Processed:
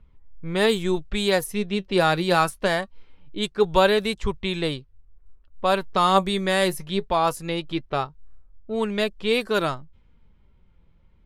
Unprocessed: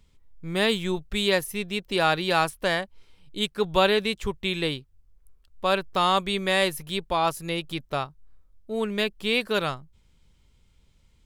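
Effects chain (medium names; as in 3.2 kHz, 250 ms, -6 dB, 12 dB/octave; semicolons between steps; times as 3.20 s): level-controlled noise filter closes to 1.6 kHz, open at -20 dBFS; dynamic bell 2.8 kHz, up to -6 dB, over -38 dBFS, Q 1.1; flange 0.23 Hz, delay 0.7 ms, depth 5.3 ms, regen +67%; trim +8 dB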